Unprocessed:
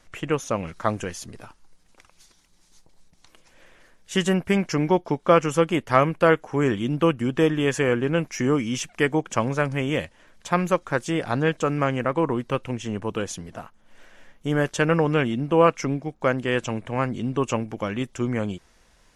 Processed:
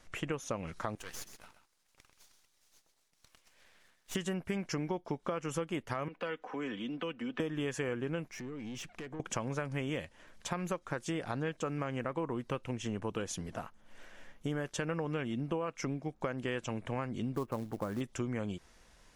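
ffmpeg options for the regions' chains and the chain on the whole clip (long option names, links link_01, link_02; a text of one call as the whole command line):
ffmpeg -i in.wav -filter_complex "[0:a]asettb=1/sr,asplit=3[link_01][link_02][link_03];[link_01]atrim=end=0.954[link_04];[link_02]atrim=start=0.95:end=4.15,asetpts=PTS-STARTPTS,afade=type=in:duration=0.004:curve=qsin,afade=type=out:start_time=3.196:duration=0.004:curve=qsin,highpass=frequency=1300:poles=1,aeval=exprs='max(val(0),0)':channel_layout=same,aecho=1:1:128:0.299,atrim=end_sample=141120[link_05];[link_03]atrim=start=4.146[link_06];[link_04][link_05]acrossfade=duration=0.004:curve1=hsin:curve2=qsin[link_07];[link_07][link_06]acrossfade=duration=0.004:curve1=qsin:curve2=hsin,asettb=1/sr,asplit=3[link_08][link_09][link_10];[link_08]atrim=end=6.084[link_11];[link_09]atrim=start=6.08:end=7.4,asetpts=PTS-STARTPTS,afade=type=in:duration=0.004:curve=qsin,afade=type=out:start_time=1.316:duration=0.004:curve=qsin,acrossover=split=160|3000[link_12][link_13][link_14];[link_13]acompressor=threshold=-36dB:ratio=3:attack=3.2:release=140:knee=2.83:detection=peak[link_15];[link_12][link_15][link_14]amix=inputs=3:normalize=0,acrossover=split=240 3900:gain=0.1 1 0.0794[link_16][link_17][link_18];[link_16][link_17][link_18]amix=inputs=3:normalize=0,aecho=1:1:4:0.56,atrim=end_sample=58212[link_19];[link_10]atrim=start=7.396[link_20];[link_11][link_19]acrossfade=duration=0.004:curve1=hsin:curve2=qsin[link_21];[link_21][link_20]acrossfade=duration=0.004:curve1=qsin:curve2=hsin,asettb=1/sr,asplit=3[link_22][link_23][link_24];[link_22]atrim=end=8.284[link_25];[link_23]atrim=start=8.28:end=9.2,asetpts=PTS-STARTPTS,afade=type=in:duration=0.004:curve=qsin,afade=type=out:start_time=0.916:duration=0.004:curve=qsin,lowpass=frequency=3200:poles=1,acompressor=threshold=-32dB:ratio=12:attack=3.2:release=140:knee=1:detection=peak,aeval=exprs='(tanh(56.2*val(0)+0.35)-tanh(0.35))/56.2':channel_layout=same[link_26];[link_24]atrim=start=9.196[link_27];[link_25][link_26]acrossfade=duration=0.004:curve1=hsin:curve2=qsin[link_28];[link_28][link_27]acrossfade=duration=0.004:curve1=qsin:curve2=hsin,asettb=1/sr,asplit=3[link_29][link_30][link_31];[link_29]atrim=end=17.354[link_32];[link_30]atrim=start=17.35:end=18.01,asetpts=PTS-STARTPTS,afade=type=in:duration=0.004:curve=qsin,afade=type=out:start_time=0.656:duration=0.004:curve=qsin,lowpass=frequency=1500:width=0.5412,lowpass=frequency=1500:width=1.3066,acrusher=bits=5:mode=log:mix=0:aa=0.000001[link_33];[link_31]atrim=start=18.006[link_34];[link_32][link_33]acrossfade=duration=0.004:curve1=hsin:curve2=qsin[link_35];[link_35][link_34]acrossfade=duration=0.004:curve1=qsin:curve2=hsin,alimiter=limit=-11.5dB:level=0:latency=1:release=159,acompressor=threshold=-30dB:ratio=5,volume=-3dB" out.wav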